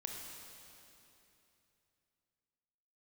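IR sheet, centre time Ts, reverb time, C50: 112 ms, 3.0 s, 1.0 dB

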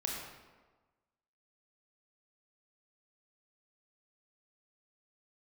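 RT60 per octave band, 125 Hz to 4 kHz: 1.3 s, 1.3 s, 1.4 s, 1.3 s, 1.1 s, 0.85 s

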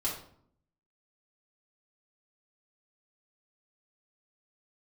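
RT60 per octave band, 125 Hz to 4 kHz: 0.95 s, 0.90 s, 0.65 s, 0.60 s, 0.45 s, 0.40 s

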